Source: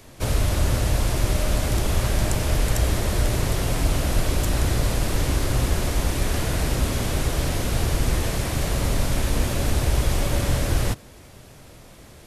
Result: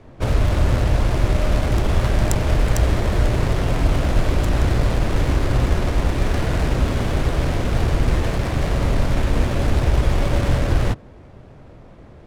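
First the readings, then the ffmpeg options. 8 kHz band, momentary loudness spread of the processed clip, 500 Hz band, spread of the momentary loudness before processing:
-7.0 dB, 2 LU, +4.0 dB, 2 LU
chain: -af "adynamicsmooth=sensitivity=2.5:basefreq=1300,crystalizer=i=1.5:c=0,volume=1.58"

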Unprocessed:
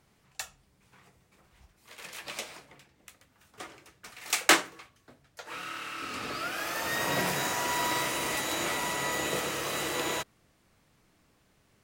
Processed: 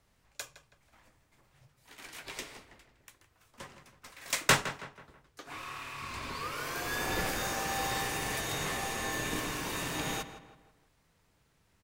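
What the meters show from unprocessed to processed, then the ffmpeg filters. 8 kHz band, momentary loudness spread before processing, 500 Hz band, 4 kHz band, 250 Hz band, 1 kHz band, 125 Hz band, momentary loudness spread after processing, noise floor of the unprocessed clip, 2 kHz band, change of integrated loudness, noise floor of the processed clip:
-3.5 dB, 19 LU, -4.0 dB, -4.0 dB, -3.0 dB, -3.5 dB, +2.5 dB, 19 LU, -68 dBFS, -3.5 dB, -4.0 dB, -71 dBFS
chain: -filter_complex "[0:a]asplit=2[s0][s1];[s1]adelay=162,lowpass=f=3100:p=1,volume=0.266,asplit=2[s2][s3];[s3]adelay=162,lowpass=f=3100:p=1,volume=0.43,asplit=2[s4][s5];[s5]adelay=162,lowpass=f=3100:p=1,volume=0.43,asplit=2[s6][s7];[s7]adelay=162,lowpass=f=3100:p=1,volume=0.43[s8];[s0][s2][s4][s6][s8]amix=inputs=5:normalize=0,afreqshift=-190,aeval=exprs='0.562*(cos(1*acos(clip(val(0)/0.562,-1,1)))-cos(1*PI/2))+0.0158*(cos(4*acos(clip(val(0)/0.562,-1,1)))-cos(4*PI/2))':c=same,volume=0.668"

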